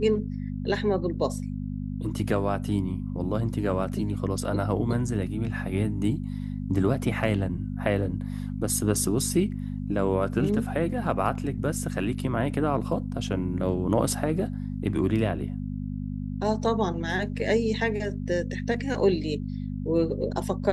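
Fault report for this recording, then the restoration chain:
hum 50 Hz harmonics 5 -32 dBFS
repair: de-hum 50 Hz, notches 5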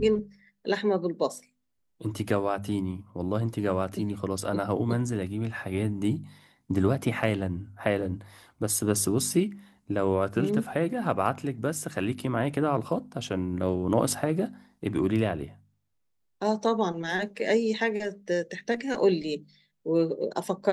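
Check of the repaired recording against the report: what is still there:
nothing left

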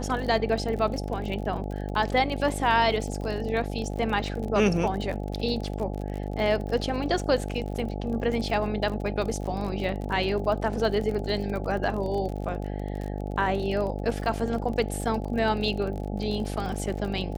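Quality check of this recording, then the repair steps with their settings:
buzz 50 Hz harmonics 17 -32 dBFS
crackle 36 per s -32 dBFS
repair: de-click; de-hum 50 Hz, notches 17

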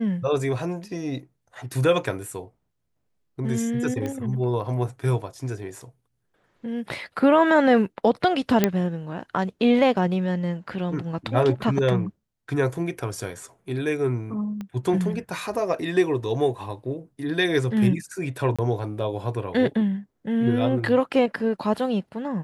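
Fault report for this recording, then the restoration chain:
4.06 s: pop -18 dBFS
8.64 s: pop -4 dBFS
14.61 s: pop -22 dBFS
18.56–18.59 s: dropout 26 ms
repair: de-click; interpolate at 18.56 s, 26 ms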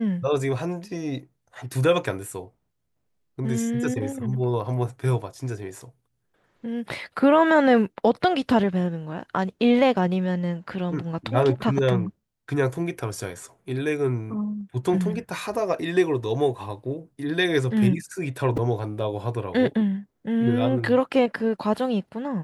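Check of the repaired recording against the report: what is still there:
14.61 s: pop

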